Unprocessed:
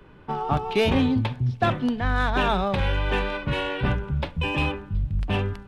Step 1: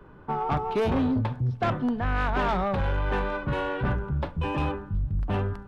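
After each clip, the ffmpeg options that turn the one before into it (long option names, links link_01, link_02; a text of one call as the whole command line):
ffmpeg -i in.wav -af "highshelf=frequency=1800:width_type=q:width=1.5:gain=-7.5,asoftclip=type=tanh:threshold=-19.5dB" out.wav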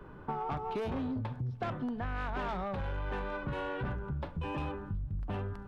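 ffmpeg -i in.wav -af "acompressor=threshold=-34dB:ratio=6" out.wav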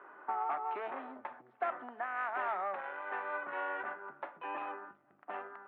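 ffmpeg -i in.wav -af "highpass=frequency=410:width=0.5412,highpass=frequency=410:width=1.3066,equalizer=frequency=470:width_type=q:width=4:gain=-10,equalizer=frequency=720:width_type=q:width=4:gain=4,equalizer=frequency=1300:width_type=q:width=4:gain=5,equalizer=frequency=1900:width_type=q:width=4:gain=5,lowpass=frequency=2400:width=0.5412,lowpass=frequency=2400:width=1.3066" out.wav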